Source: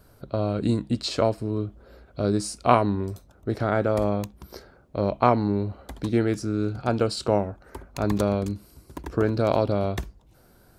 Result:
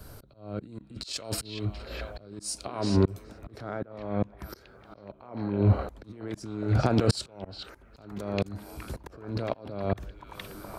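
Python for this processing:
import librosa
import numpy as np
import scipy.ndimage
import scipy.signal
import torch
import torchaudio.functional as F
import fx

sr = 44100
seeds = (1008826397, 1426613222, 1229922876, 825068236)

y = fx.high_shelf(x, sr, hz=2500.0, db=10.5, at=(1.13, 1.65))
y = fx.lowpass(y, sr, hz=4800.0, slope=12, at=(3.68, 4.39))
y = fx.over_compress(y, sr, threshold_db=-31.0, ratio=-1.0)
y = fx.echo_stepped(y, sr, ms=418, hz=2700.0, octaves=-0.7, feedback_pct=70, wet_db=-3.0)
y = fx.auto_swell(y, sr, attack_ms=591.0)
y = fx.band_widen(y, sr, depth_pct=40)
y = F.gain(torch.from_numpy(y), 6.5).numpy()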